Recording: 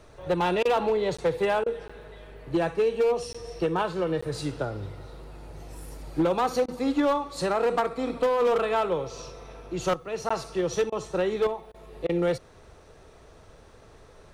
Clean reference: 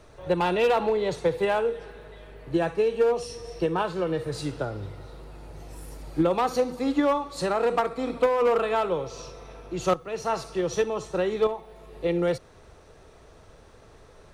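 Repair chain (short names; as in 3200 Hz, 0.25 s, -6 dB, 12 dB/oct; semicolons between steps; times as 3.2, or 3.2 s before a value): clip repair -18 dBFS; interpolate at 1.17/1.88/3.33/4.21/10.29, 15 ms; interpolate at 0.63/1.64/6.66/10.9/11.72/12.07, 21 ms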